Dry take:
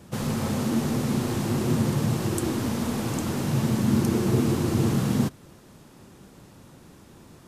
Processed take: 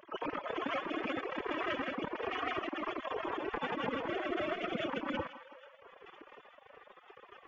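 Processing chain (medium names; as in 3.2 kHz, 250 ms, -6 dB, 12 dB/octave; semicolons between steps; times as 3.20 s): formants replaced by sine waves; compression 10:1, threshold -33 dBFS, peak gain reduction 19 dB; thinning echo 160 ms, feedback 78%, high-pass 620 Hz, level -7.5 dB; formant-preserving pitch shift +12 st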